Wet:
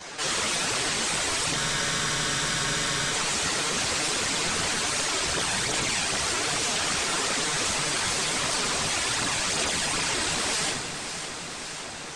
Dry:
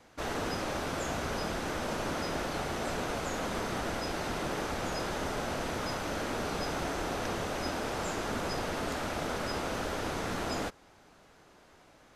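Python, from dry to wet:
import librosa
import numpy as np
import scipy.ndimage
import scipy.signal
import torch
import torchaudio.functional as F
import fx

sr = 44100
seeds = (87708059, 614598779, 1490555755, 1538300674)

y = fx.self_delay(x, sr, depth_ms=0.94)
y = scipy.signal.sosfilt(scipy.signal.butter(2, 58.0, 'highpass', fs=sr, output='sos'), y)
y = fx.high_shelf(y, sr, hz=3800.0, db=11.5)
y = (np.mod(10.0 ** (23.5 / 20.0) * y + 1.0, 2.0) - 1.0) / 10.0 ** (23.5 / 20.0)
y = scipy.signal.sosfilt(scipy.signal.cheby1(4, 1.0, 8700.0, 'lowpass', fs=sr, output='sos'), y)
y = fx.low_shelf(y, sr, hz=320.0, db=-7.5)
y = fx.rev_fdn(y, sr, rt60_s=0.71, lf_ratio=1.5, hf_ratio=0.85, size_ms=43.0, drr_db=-4.0)
y = fx.whisperise(y, sr, seeds[0])
y = fx.chorus_voices(y, sr, voices=2, hz=1.3, base_ms=10, depth_ms=3.4, mix_pct=65)
y = fx.echo_feedback(y, sr, ms=559, feedback_pct=57, wet_db=-16)
y = fx.spec_freeze(y, sr, seeds[1], at_s=1.58, hold_s=1.54)
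y = fx.env_flatten(y, sr, amount_pct=50)
y = y * librosa.db_to_amplitude(4.5)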